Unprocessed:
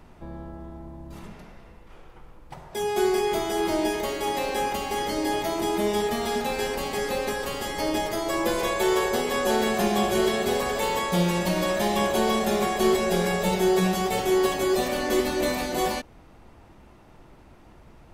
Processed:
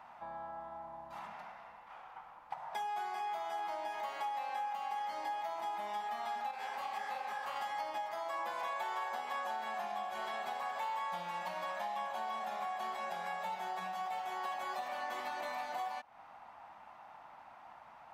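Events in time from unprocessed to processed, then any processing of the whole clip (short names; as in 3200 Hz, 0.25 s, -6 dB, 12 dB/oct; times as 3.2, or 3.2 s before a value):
6.51–7.56 detuned doubles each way 54 cents
whole clip: EQ curve 230 Hz 0 dB, 400 Hz -11 dB, 780 Hz +13 dB, 9600 Hz -30 dB; compressor, threshold -32 dBFS; differentiator; gain +13 dB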